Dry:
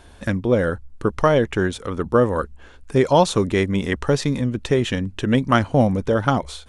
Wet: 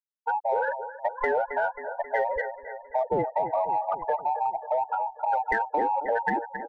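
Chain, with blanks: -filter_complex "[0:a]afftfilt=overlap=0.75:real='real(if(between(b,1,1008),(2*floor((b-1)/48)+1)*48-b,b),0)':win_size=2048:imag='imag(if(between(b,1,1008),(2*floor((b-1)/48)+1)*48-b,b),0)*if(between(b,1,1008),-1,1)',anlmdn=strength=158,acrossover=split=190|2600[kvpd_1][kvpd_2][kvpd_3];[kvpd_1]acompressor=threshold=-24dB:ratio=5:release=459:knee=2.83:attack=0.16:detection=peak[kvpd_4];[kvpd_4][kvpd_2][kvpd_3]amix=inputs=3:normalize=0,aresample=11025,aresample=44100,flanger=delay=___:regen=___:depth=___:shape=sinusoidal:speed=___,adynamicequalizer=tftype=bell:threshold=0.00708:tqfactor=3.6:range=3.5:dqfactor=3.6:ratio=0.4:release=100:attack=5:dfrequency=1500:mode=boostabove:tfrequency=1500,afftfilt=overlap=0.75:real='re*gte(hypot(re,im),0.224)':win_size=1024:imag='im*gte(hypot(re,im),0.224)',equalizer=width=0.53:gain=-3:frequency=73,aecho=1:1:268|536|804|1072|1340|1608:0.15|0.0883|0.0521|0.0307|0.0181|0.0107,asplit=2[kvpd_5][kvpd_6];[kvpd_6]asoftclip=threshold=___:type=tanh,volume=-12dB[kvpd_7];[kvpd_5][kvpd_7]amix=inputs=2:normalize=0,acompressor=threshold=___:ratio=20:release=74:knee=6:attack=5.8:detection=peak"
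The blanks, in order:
4.4, -59, 2, 1.6, -23dB, -21dB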